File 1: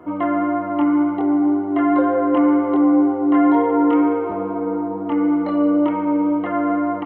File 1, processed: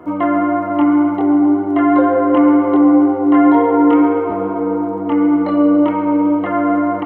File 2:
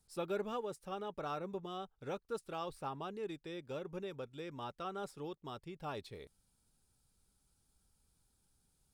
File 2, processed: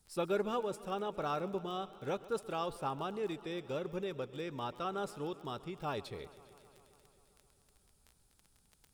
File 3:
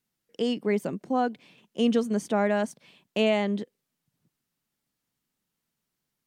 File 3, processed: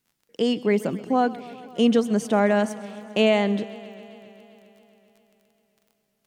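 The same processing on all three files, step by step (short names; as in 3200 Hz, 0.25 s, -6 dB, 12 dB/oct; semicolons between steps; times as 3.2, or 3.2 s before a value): crackle 24/s -49 dBFS; warbling echo 0.133 s, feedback 78%, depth 79 cents, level -19 dB; gain +4.5 dB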